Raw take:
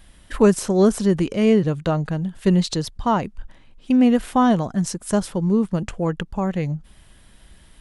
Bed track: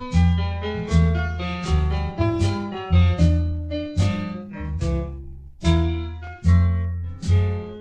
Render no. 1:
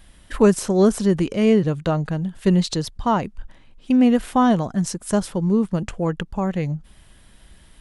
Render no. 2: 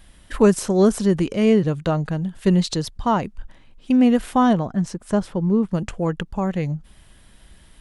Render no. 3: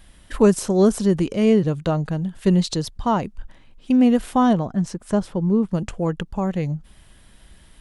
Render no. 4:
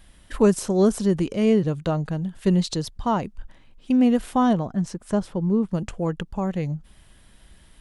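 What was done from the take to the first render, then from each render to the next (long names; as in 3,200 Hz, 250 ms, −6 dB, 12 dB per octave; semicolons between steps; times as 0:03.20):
no processing that can be heard
0:04.53–0:05.69: low-pass filter 2,300 Hz 6 dB per octave
dynamic equaliser 1,800 Hz, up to −3 dB, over −39 dBFS, Q 1
level −2.5 dB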